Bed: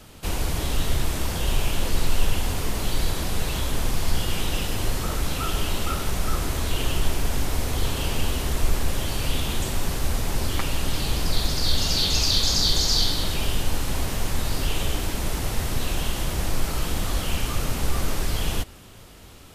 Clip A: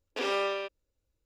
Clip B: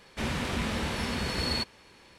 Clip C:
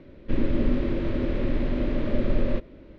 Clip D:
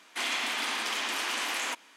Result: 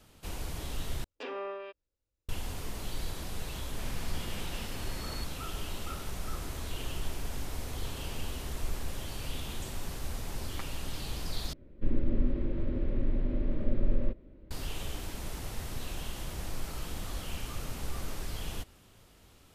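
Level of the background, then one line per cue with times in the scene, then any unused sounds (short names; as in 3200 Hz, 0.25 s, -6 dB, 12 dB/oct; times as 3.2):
bed -12.5 dB
1.04 replace with A -7.5 dB + treble ducked by the level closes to 1500 Hz, closed at -27 dBFS
3.61 add B -14 dB
11.53 replace with C -12.5 dB + tilt -2 dB/oct
not used: D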